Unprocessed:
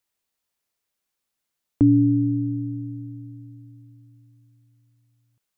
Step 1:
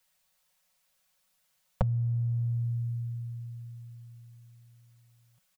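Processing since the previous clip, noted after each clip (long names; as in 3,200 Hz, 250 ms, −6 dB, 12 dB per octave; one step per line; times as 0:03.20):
downward compressor 3 to 1, threshold −25 dBFS, peak gain reduction 9.5 dB
elliptic band-stop filter 190–470 Hz
comb filter 5.4 ms, depth 82%
level +6 dB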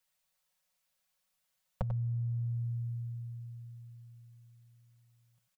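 slap from a distant wall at 16 metres, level −9 dB
level −7.5 dB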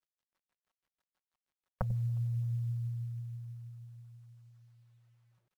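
auto-filter low-pass sine 6.2 Hz 280–1,500 Hz
log-companded quantiser 8 bits
far-end echo of a speakerphone 360 ms, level −28 dB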